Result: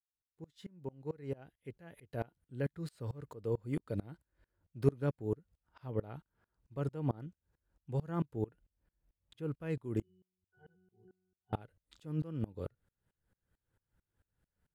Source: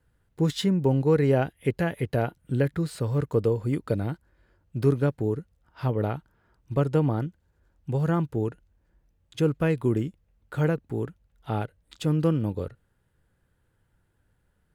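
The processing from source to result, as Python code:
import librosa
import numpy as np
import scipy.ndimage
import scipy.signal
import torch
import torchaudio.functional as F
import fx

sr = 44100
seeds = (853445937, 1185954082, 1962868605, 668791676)

y = fx.fade_in_head(x, sr, length_s=3.73)
y = fx.peak_eq(y, sr, hz=6300.0, db=-9.0, octaves=0.78, at=(8.42, 9.52))
y = fx.octave_resonator(y, sr, note='F#', decay_s=0.54, at=(10.02, 11.53))
y = fx.tremolo_decay(y, sr, direction='swelling', hz=4.5, depth_db=27)
y = y * librosa.db_to_amplitude(-4.0)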